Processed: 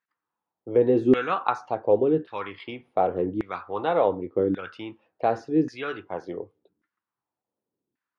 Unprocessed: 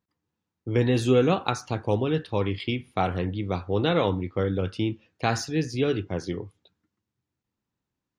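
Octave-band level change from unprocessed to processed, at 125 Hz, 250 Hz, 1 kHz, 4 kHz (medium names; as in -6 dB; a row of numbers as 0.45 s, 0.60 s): -11.0 dB, 0.0 dB, +3.0 dB, -10.0 dB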